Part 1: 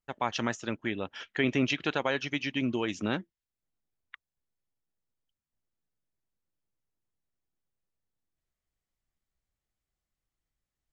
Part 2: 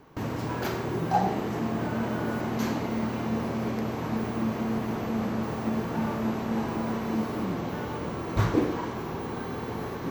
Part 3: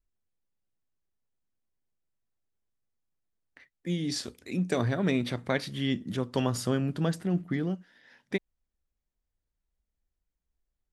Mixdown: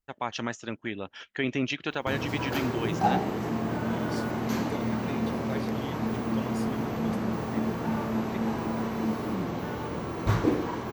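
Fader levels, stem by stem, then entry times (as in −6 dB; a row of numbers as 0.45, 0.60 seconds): −1.5, −0.5, −11.0 decibels; 0.00, 1.90, 0.00 seconds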